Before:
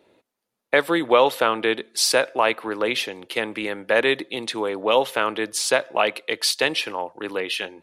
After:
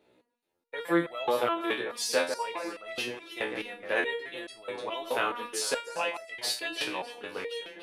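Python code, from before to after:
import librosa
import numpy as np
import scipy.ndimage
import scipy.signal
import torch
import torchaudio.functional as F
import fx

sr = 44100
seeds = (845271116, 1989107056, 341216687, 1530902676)

y = fx.echo_alternate(x, sr, ms=149, hz=2100.0, feedback_pct=62, wet_db=-7.5)
y = fx.resonator_held(y, sr, hz=4.7, low_hz=62.0, high_hz=660.0)
y = F.gain(torch.from_numpy(y), 1.5).numpy()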